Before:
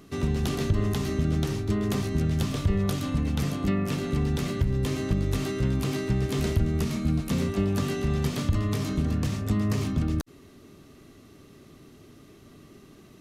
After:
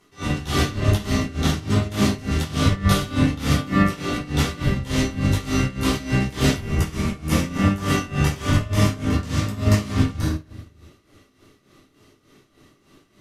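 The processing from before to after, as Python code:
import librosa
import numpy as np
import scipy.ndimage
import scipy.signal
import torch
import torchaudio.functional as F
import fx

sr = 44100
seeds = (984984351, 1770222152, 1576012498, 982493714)

y = scipy.signal.sosfilt(scipy.signal.bessel(2, 12000.0, 'lowpass', norm='mag', fs=sr, output='sos'), x)
y = fx.low_shelf(y, sr, hz=490.0, db=-11.0)
y = fx.room_shoebox(y, sr, seeds[0], volume_m3=410.0, walls='mixed', distance_m=4.4)
y = y * (1.0 - 0.73 / 2.0 + 0.73 / 2.0 * np.cos(2.0 * np.pi * 3.4 * (np.arange(len(y)) / sr)))
y = fx.peak_eq(y, sr, hz=4100.0, db=-6.0, octaves=0.39, at=(6.61, 9.14))
y = fx.upward_expand(y, sr, threshold_db=-43.0, expansion=1.5)
y = y * librosa.db_to_amplitude(6.0)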